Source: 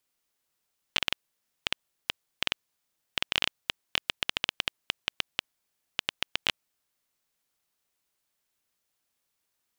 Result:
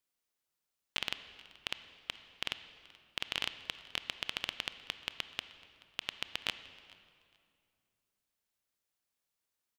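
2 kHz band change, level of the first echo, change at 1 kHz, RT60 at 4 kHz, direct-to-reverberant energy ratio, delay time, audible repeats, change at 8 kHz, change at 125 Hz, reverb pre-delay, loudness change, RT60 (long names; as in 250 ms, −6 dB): −7.0 dB, −23.5 dB, −7.0 dB, 1.7 s, 11.0 dB, 430 ms, 1, −7.5 dB, −7.0 dB, 24 ms, −7.0 dB, 2.4 s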